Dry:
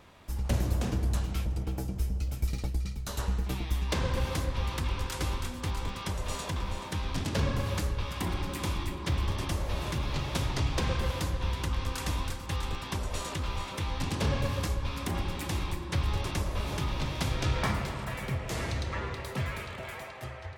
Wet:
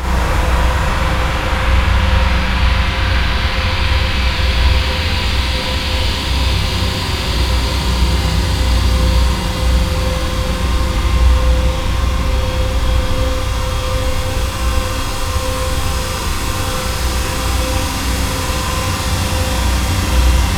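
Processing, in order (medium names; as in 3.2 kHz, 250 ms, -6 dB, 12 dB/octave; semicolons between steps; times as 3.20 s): painted sound rise, 11.08–11.59 s, 210–5200 Hz -38 dBFS; Paulstretch 27×, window 0.50 s, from 11.34 s; Schroeder reverb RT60 1.6 s, combs from 33 ms, DRR -8 dB; trim +7 dB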